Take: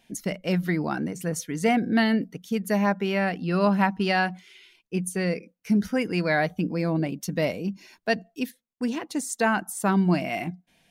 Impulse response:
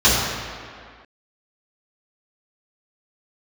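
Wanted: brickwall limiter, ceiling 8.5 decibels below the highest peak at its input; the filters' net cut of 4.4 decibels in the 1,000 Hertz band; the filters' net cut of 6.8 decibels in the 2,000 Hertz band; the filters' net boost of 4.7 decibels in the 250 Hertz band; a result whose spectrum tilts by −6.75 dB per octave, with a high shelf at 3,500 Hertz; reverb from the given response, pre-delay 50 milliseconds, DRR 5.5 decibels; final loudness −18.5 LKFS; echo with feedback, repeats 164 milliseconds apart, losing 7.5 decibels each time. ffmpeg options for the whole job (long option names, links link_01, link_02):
-filter_complex "[0:a]equalizer=frequency=250:width_type=o:gain=6.5,equalizer=frequency=1000:width_type=o:gain=-5.5,equalizer=frequency=2000:width_type=o:gain=-4.5,highshelf=frequency=3500:gain=-8.5,alimiter=limit=-16dB:level=0:latency=1,aecho=1:1:164|328|492|656|820:0.422|0.177|0.0744|0.0312|0.0131,asplit=2[link_01][link_02];[1:a]atrim=start_sample=2205,adelay=50[link_03];[link_02][link_03]afir=irnorm=-1:irlink=0,volume=-29.5dB[link_04];[link_01][link_04]amix=inputs=2:normalize=0,volume=5dB"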